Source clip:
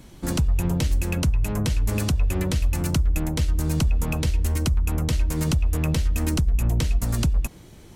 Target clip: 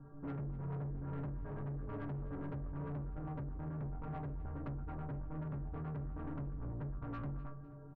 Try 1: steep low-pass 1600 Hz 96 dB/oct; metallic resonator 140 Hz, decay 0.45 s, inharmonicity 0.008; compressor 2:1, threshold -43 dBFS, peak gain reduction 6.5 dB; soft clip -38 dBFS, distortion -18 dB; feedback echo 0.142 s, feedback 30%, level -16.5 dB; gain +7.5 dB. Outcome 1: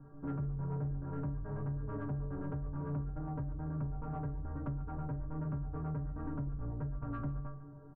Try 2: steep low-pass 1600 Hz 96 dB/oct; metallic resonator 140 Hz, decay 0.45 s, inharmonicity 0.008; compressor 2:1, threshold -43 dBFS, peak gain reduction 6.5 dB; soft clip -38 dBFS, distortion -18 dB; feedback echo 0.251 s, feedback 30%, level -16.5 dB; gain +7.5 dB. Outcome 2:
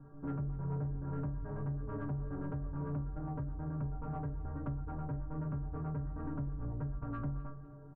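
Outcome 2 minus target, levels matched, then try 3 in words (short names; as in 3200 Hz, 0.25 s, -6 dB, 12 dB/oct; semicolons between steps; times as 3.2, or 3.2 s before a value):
soft clip: distortion -8 dB
steep low-pass 1600 Hz 96 dB/oct; metallic resonator 140 Hz, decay 0.45 s, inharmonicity 0.008; compressor 2:1, threshold -43 dBFS, peak gain reduction 6.5 dB; soft clip -45.5 dBFS, distortion -10 dB; feedback echo 0.251 s, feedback 30%, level -16.5 dB; gain +7.5 dB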